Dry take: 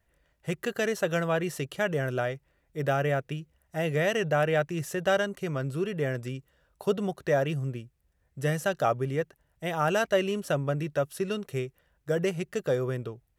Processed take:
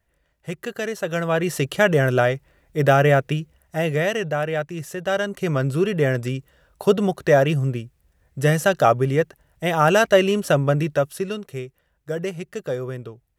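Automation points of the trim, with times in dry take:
1.01 s +1 dB
1.66 s +11 dB
3.37 s +11 dB
4.40 s +1 dB
5.07 s +1 dB
5.49 s +9.5 dB
10.82 s +9.5 dB
11.51 s +0.5 dB

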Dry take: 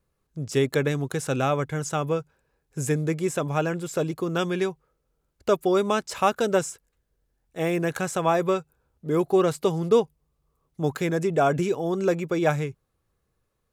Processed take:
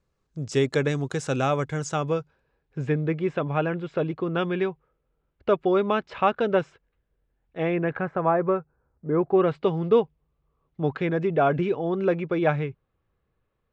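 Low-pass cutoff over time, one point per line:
low-pass 24 dB/octave
1.82 s 7.6 kHz
2.89 s 3.2 kHz
7.64 s 3.2 kHz
8.13 s 1.8 kHz
9.14 s 1.8 kHz
9.60 s 3.3 kHz

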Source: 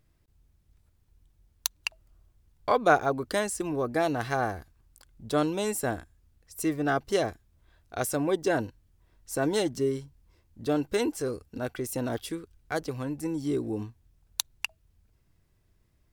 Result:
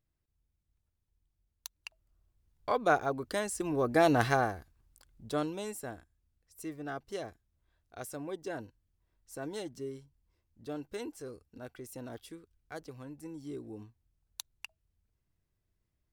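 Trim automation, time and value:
1.73 s -15.5 dB
2.81 s -5.5 dB
3.42 s -5.5 dB
4.23 s +4.5 dB
4.56 s -5.5 dB
5.26 s -5.5 dB
5.94 s -13 dB

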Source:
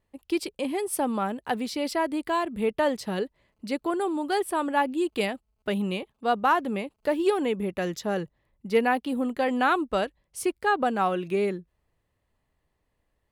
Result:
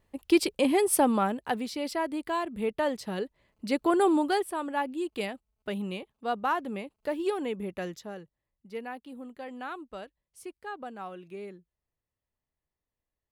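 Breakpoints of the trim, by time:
0.92 s +5 dB
1.71 s -4 dB
3.19 s -4 dB
4.14 s +5.5 dB
4.51 s -6 dB
7.83 s -6 dB
8.23 s -15.5 dB

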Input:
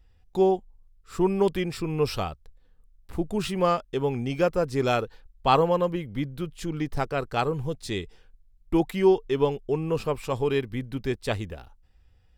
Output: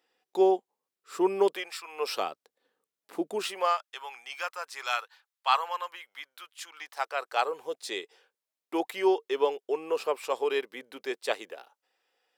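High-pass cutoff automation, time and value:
high-pass 24 dB/octave
1.46 s 330 Hz
1.77 s 1 kHz
2.25 s 310 Hz
3.32 s 310 Hz
3.83 s 940 Hz
6.72 s 940 Hz
7.72 s 420 Hz

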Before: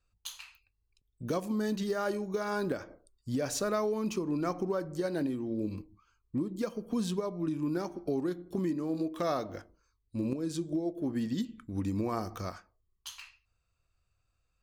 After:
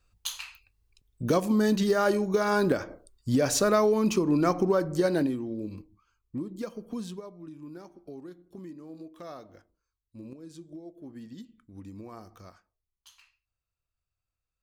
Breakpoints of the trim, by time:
5.11 s +8 dB
5.61 s -2 dB
6.87 s -2 dB
7.42 s -11.5 dB

